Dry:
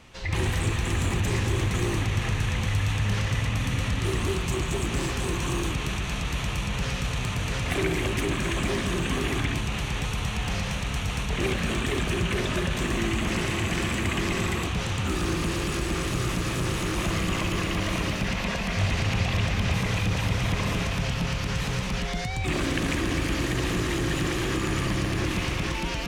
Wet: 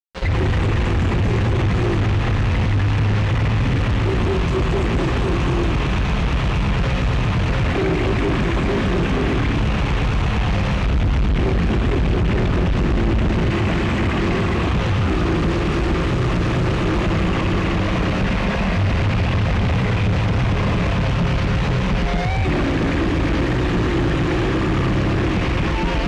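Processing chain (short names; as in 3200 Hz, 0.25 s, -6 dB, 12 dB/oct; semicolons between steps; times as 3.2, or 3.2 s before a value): 10.86–13.51 low shelf 210 Hz +9 dB; limiter -19.5 dBFS, peak gain reduction 10.5 dB; fuzz box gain 42 dB, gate -36 dBFS; tape spacing loss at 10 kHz 29 dB; gain -1 dB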